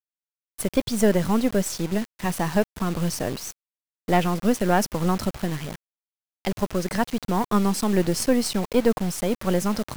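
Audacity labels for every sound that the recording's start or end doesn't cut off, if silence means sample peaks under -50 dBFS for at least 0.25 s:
0.580000	3.520000	sound
4.080000	5.760000	sound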